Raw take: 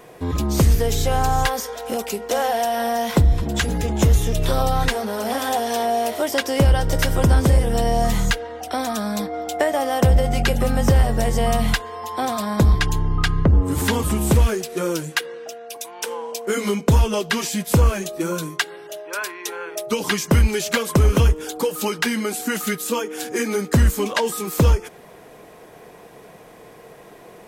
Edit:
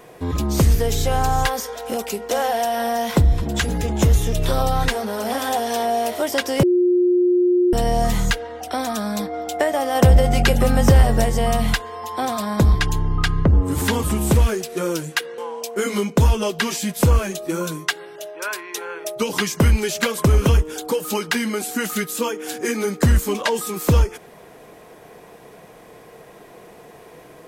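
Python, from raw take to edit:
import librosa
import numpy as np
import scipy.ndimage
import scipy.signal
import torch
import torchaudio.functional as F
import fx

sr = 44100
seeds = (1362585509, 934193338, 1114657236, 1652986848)

y = fx.edit(x, sr, fx.bleep(start_s=6.63, length_s=1.1, hz=357.0, db=-13.0),
    fx.clip_gain(start_s=9.95, length_s=1.3, db=3.0),
    fx.cut(start_s=15.38, length_s=0.71), tone=tone)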